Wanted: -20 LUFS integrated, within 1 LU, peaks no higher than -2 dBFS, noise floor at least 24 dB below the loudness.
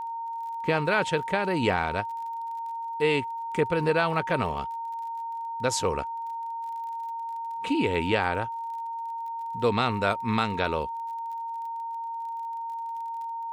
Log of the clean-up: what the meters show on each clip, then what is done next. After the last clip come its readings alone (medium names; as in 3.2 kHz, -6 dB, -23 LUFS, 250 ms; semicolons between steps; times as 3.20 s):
tick rate 31 per s; steady tone 920 Hz; tone level -31 dBFS; loudness -29.0 LUFS; peak level -11.5 dBFS; loudness target -20.0 LUFS
-> de-click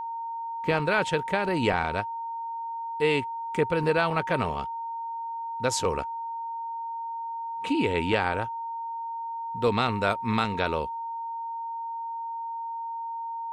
tick rate 0 per s; steady tone 920 Hz; tone level -31 dBFS
-> band-stop 920 Hz, Q 30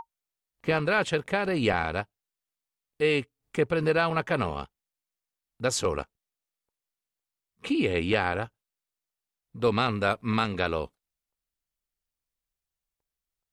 steady tone not found; loudness -27.5 LUFS; peak level -12.5 dBFS; loudness target -20.0 LUFS
-> trim +7.5 dB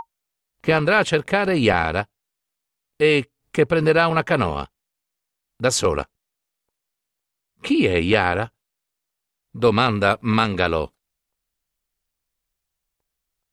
loudness -20.0 LUFS; peak level -5.0 dBFS; noise floor -82 dBFS